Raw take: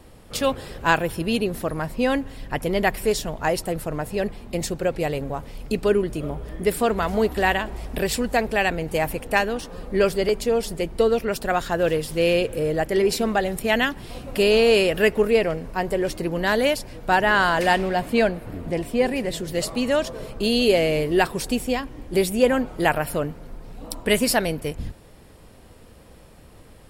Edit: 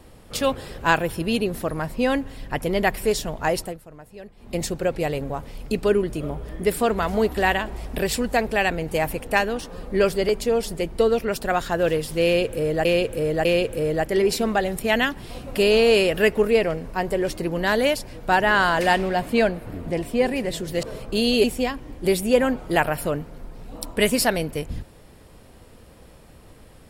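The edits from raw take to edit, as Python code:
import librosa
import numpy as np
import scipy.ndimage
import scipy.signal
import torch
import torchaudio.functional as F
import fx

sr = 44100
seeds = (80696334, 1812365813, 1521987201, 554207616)

y = fx.edit(x, sr, fx.fade_down_up(start_s=3.6, length_s=0.94, db=-16.0, fade_s=0.18),
    fx.repeat(start_s=12.25, length_s=0.6, count=3),
    fx.cut(start_s=19.63, length_s=0.48),
    fx.cut(start_s=20.72, length_s=0.81), tone=tone)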